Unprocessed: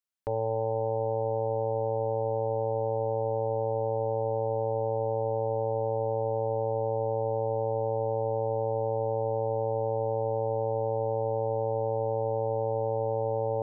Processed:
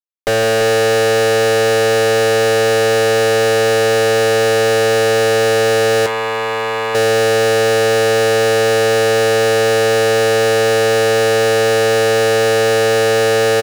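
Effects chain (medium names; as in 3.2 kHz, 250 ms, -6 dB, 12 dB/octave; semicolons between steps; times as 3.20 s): high-pass 170 Hz 24 dB/octave; tilt shelf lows +7 dB, about 830 Hz; fuzz box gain 57 dB, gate -57 dBFS; band-stop 850 Hz, Q 12; on a send: multi-tap echo 156/337 ms -13/-10 dB; 6.06–6.95 s: on the sum: transformer saturation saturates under 1.6 kHz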